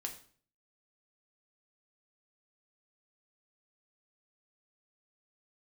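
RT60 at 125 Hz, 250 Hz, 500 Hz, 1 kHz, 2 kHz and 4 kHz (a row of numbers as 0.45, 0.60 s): 0.70, 0.60, 0.50, 0.45, 0.45, 0.45 s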